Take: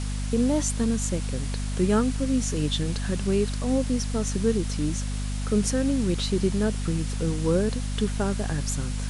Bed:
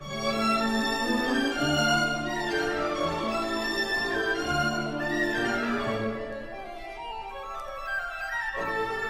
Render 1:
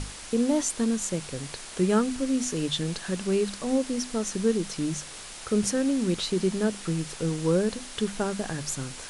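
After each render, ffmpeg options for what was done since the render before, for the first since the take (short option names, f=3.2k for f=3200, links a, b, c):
-af "bandreject=f=50:t=h:w=6,bandreject=f=100:t=h:w=6,bandreject=f=150:t=h:w=6,bandreject=f=200:t=h:w=6,bandreject=f=250:t=h:w=6"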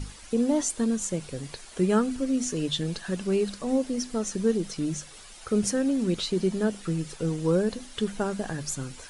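-af "afftdn=nr=10:nf=-42"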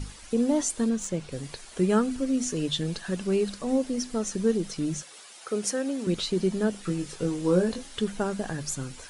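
-filter_complex "[0:a]asettb=1/sr,asplit=3[a][b][c];[a]atrim=end=0.894[d];[b]atrim=start=0.89:end=1.32,asetpts=PTS-STARTPTS,afade=t=in:d=0.004:c=qsin,afade=t=out:st=0.426:d=0.004:c=qsin,adynamicsmooth=sensitivity=2.5:basefreq=7.4k[e];[c]atrim=start=1.316[f];[d][e]acrossfade=d=0.004:c1=hsin:c2=qsin[g];[g][f]acrossfade=d=0.004:c1=qsin:c2=hsin,asettb=1/sr,asplit=3[h][i][j];[h]atrim=end=5.024[k];[i]atrim=start=5.02:end=6.07,asetpts=PTS-STARTPTS,afade=t=in:d=0.004:c=qsin,afade=t=out:st=1.046:d=0.004:c=qsin,highpass=340[l];[j]atrim=start=6.066[m];[k][l]acrossfade=d=0.004:c1=hsin:c2=qsin[n];[n][m]acrossfade=d=0.004:c1=qsin:c2=hsin,asettb=1/sr,asplit=3[o][p][q];[o]atrim=end=6.824[r];[p]atrim=start=6.82:end=7.97,asetpts=PTS-STARTPTS,afade=t=in:d=0.004:c=qsin,afade=t=out:st=1.146:d=0.004:c=qsin,asplit=2[s][t];[t]adelay=22,volume=-5.5dB[u];[s][u]amix=inputs=2:normalize=0,atrim=end_sample=50715[v];[q]atrim=start=7.966[w];[r][v]acrossfade=d=0.004:c1=hsin:c2=qsin[x];[x][w]acrossfade=d=0.004:c1=qsin:c2=hsin"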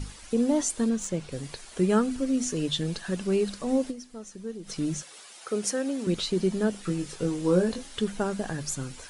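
-filter_complex "[0:a]asplit=3[a][b][c];[a]atrim=end=4.08,asetpts=PTS-STARTPTS,afade=t=out:st=3.9:d=0.18:c=exp:silence=0.237137[d];[b]atrim=start=4.08:end=4.51,asetpts=PTS-STARTPTS,volume=-12.5dB[e];[c]atrim=start=4.51,asetpts=PTS-STARTPTS,afade=t=in:d=0.18:c=exp:silence=0.237137[f];[d][e][f]concat=n=3:v=0:a=1"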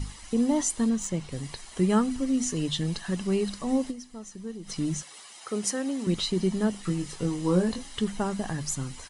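-af "aecho=1:1:1:0.39"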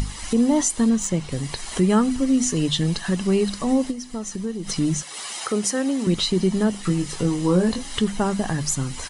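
-filter_complex "[0:a]asplit=2[a][b];[b]alimiter=limit=-19dB:level=0:latency=1:release=91,volume=2dB[c];[a][c]amix=inputs=2:normalize=0,acompressor=mode=upward:threshold=-22dB:ratio=2.5"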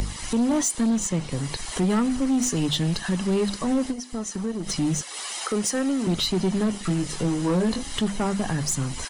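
-filter_complex "[0:a]acrossover=split=220|1100[a][b][c];[a]acrusher=bits=5:mix=0:aa=0.5[d];[d][b][c]amix=inputs=3:normalize=0,asoftclip=type=tanh:threshold=-17dB"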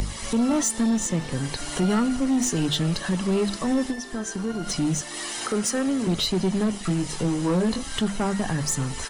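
-filter_complex "[1:a]volume=-13dB[a];[0:a][a]amix=inputs=2:normalize=0"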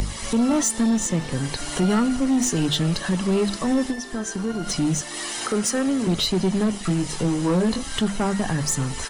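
-af "volume=2dB"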